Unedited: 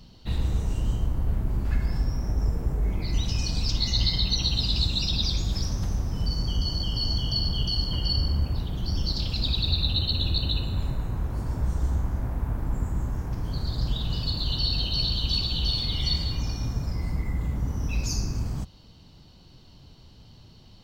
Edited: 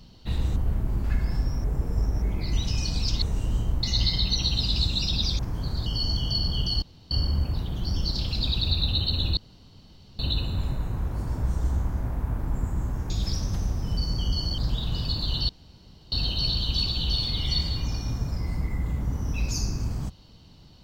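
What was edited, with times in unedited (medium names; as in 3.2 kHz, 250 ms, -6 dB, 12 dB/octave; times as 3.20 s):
0.56–1.17 s: move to 3.83 s
2.25–2.83 s: reverse
5.39–6.87 s: swap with 13.29–13.76 s
7.83–8.12 s: room tone
10.38 s: insert room tone 0.82 s
14.67 s: insert room tone 0.63 s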